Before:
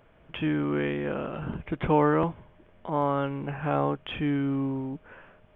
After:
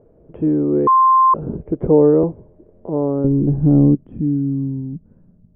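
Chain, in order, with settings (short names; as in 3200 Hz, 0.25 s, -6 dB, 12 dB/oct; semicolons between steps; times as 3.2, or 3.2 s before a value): 3.24–3.95 tilt -3.5 dB/oct; low-pass sweep 440 Hz -> 190 Hz, 2.86–4.7; 0.87–1.34 bleep 1050 Hz -14.5 dBFS; gain +6 dB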